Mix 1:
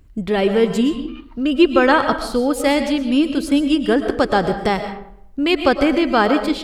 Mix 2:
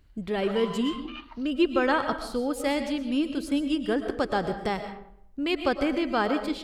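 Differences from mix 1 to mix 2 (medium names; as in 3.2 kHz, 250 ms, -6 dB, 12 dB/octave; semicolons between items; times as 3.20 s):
speech -10.0 dB; background +3.5 dB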